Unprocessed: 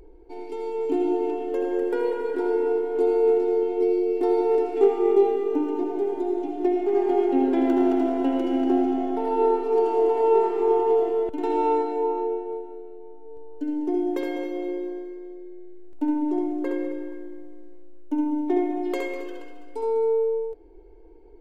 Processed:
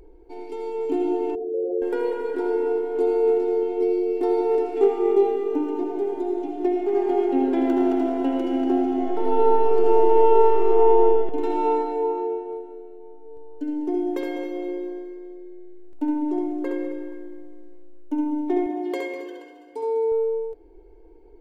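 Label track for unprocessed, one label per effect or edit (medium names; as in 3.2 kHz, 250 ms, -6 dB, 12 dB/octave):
1.350000	1.820000	resonances exaggerated exponent 3
8.890000	11.010000	reverb throw, RT60 2.7 s, DRR 1.5 dB
18.660000	20.120000	comb of notches 1.3 kHz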